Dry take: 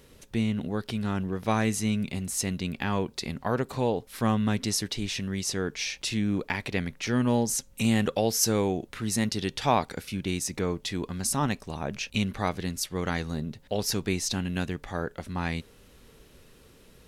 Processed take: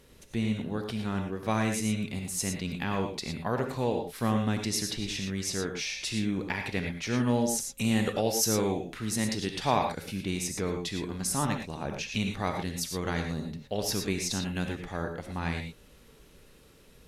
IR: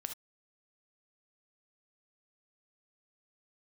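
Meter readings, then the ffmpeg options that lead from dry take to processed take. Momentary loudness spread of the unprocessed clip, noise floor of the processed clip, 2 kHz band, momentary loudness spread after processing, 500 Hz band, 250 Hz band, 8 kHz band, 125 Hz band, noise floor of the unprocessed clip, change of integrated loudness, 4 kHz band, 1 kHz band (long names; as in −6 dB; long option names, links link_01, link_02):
8 LU, −56 dBFS, −1.5 dB, 7 LU, −1.5 dB, −2.0 dB, −1.5 dB, −2.0 dB, −56 dBFS, −2.0 dB, −1.5 dB, −1.5 dB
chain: -filter_complex "[1:a]atrim=start_sample=2205,asetrate=28665,aresample=44100[link_01];[0:a][link_01]afir=irnorm=-1:irlink=0,volume=-2.5dB"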